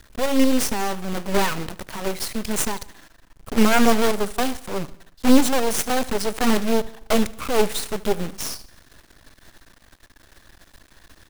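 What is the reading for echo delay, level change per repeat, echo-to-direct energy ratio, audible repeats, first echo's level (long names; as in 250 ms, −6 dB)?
74 ms, −6.0 dB, −18.5 dB, 3, −19.5 dB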